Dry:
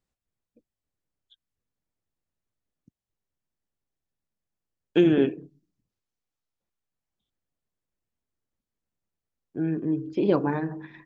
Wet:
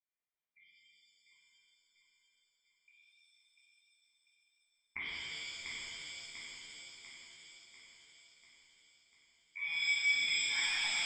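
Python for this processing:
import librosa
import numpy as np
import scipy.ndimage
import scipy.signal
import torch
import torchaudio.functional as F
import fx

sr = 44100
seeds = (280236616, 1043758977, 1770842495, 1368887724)

p1 = fx.law_mismatch(x, sr, coded='mu', at=(9.65, 10.29))
p2 = scipy.signal.sosfilt(scipy.signal.butter(4, 180.0, 'highpass', fs=sr, output='sos'), p1)
p3 = fx.level_steps(p2, sr, step_db=21)
p4 = fx.gate_flip(p3, sr, shuts_db=-25.0, range_db=-38)
p5 = p4 + fx.echo_feedback(p4, sr, ms=694, feedback_pct=55, wet_db=-4.5, dry=0)
p6 = fx.freq_invert(p5, sr, carrier_hz=2600)
p7 = fx.rev_shimmer(p6, sr, seeds[0], rt60_s=2.5, semitones=7, shimmer_db=-2, drr_db=-10.0)
y = p7 * librosa.db_to_amplitude(-4.0)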